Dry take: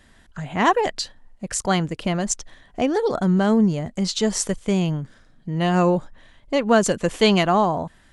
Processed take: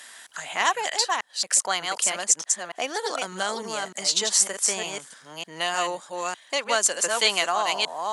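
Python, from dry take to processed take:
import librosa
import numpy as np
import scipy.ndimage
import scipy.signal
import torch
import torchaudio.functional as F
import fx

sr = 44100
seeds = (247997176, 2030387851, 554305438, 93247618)

y = fx.reverse_delay(x, sr, ms=302, wet_db=-4.5)
y = scipy.signal.sosfilt(scipy.signal.butter(2, 840.0, 'highpass', fs=sr, output='sos'), y)
y = fx.peak_eq(y, sr, hz=9600.0, db=10.5, octaves=1.7)
y = fx.band_squash(y, sr, depth_pct=40)
y = F.gain(torch.from_numpy(y), -1.5).numpy()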